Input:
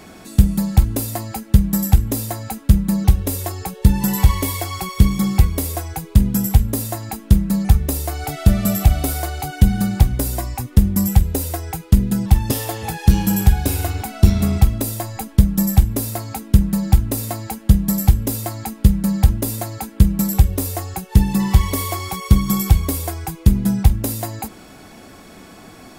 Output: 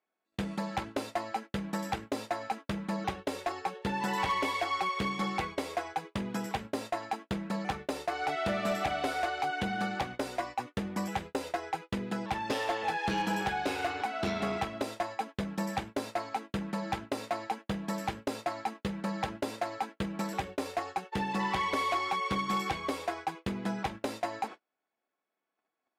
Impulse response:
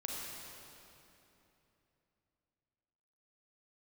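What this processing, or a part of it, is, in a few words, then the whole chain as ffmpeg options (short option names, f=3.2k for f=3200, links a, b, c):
walkie-talkie: -af "highpass=510,lowpass=2.8k,asoftclip=type=hard:threshold=-24.5dB,agate=range=-41dB:threshold=-40dB:ratio=16:detection=peak"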